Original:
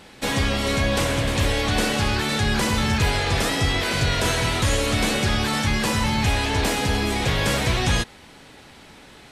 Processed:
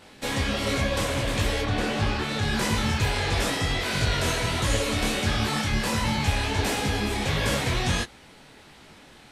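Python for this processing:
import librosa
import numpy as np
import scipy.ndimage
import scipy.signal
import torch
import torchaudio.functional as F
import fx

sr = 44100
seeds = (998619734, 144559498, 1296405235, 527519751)

y = fx.lowpass(x, sr, hz=fx.line((1.61, 2500.0), (2.41, 4600.0)), slope=6, at=(1.61, 2.41), fade=0.02)
y = fx.detune_double(y, sr, cents=51)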